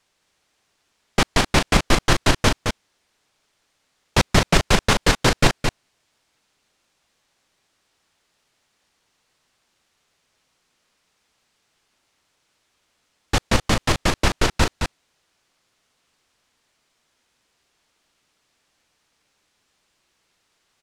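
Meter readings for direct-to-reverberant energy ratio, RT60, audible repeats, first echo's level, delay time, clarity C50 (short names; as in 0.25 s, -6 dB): none, none, 1, -6.0 dB, 0.217 s, none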